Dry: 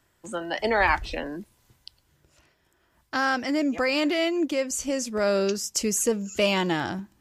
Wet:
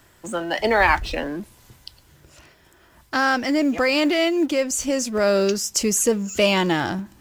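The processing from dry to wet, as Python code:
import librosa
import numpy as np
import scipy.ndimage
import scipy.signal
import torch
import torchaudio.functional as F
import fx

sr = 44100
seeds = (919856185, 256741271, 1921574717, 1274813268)

y = fx.law_mismatch(x, sr, coded='mu')
y = y * 10.0 ** (4.0 / 20.0)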